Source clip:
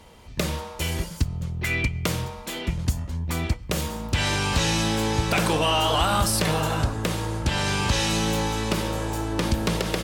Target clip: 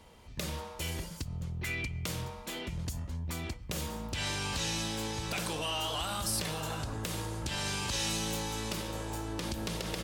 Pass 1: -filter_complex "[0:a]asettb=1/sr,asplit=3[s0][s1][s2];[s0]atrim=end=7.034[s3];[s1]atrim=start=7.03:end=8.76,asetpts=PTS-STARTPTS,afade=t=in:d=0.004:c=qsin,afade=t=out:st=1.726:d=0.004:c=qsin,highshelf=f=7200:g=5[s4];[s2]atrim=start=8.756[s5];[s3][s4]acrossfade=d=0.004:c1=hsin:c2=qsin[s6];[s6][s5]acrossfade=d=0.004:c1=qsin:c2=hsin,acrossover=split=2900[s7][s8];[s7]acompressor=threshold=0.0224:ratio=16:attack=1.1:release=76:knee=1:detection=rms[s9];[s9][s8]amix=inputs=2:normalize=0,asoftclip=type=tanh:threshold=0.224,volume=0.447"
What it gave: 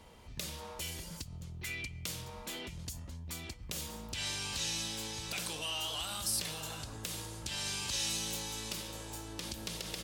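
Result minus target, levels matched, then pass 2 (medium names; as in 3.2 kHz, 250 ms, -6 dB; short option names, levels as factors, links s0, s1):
compression: peak gain reduction +8.5 dB
-filter_complex "[0:a]asettb=1/sr,asplit=3[s0][s1][s2];[s0]atrim=end=7.034[s3];[s1]atrim=start=7.03:end=8.76,asetpts=PTS-STARTPTS,afade=t=in:d=0.004:c=qsin,afade=t=out:st=1.726:d=0.004:c=qsin,highshelf=f=7200:g=5[s4];[s2]atrim=start=8.756[s5];[s3][s4]acrossfade=d=0.004:c1=hsin:c2=qsin[s6];[s6][s5]acrossfade=d=0.004:c1=qsin:c2=hsin,acrossover=split=2900[s7][s8];[s7]acompressor=threshold=0.0631:ratio=16:attack=1.1:release=76:knee=1:detection=rms[s9];[s9][s8]amix=inputs=2:normalize=0,asoftclip=type=tanh:threshold=0.224,volume=0.447"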